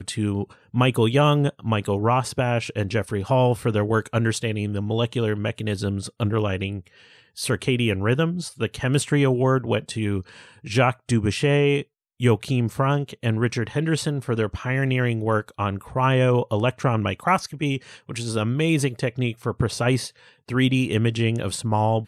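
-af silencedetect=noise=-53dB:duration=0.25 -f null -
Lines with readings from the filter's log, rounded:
silence_start: 11.85
silence_end: 12.20 | silence_duration: 0.35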